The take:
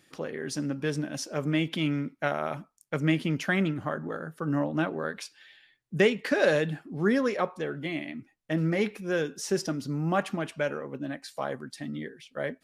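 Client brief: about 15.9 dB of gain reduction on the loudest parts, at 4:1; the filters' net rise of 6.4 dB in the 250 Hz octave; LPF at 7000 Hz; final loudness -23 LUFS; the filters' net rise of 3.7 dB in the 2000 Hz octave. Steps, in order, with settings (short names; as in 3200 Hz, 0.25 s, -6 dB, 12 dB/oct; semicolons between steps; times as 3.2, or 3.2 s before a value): LPF 7000 Hz; bell 250 Hz +8.5 dB; bell 2000 Hz +4.5 dB; compressor 4:1, threshold -34 dBFS; gain +14 dB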